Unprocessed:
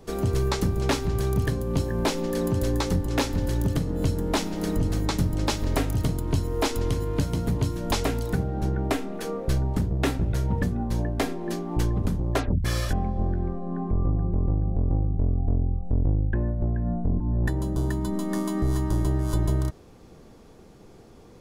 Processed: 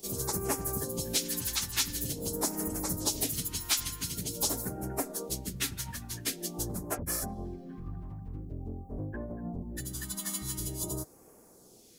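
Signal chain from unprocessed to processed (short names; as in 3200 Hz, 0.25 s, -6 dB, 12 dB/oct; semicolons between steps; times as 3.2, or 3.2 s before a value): phaser stages 2, 0.26 Hz, lowest notch 470–3500 Hz; plain phase-vocoder stretch 0.56×; RIAA curve recording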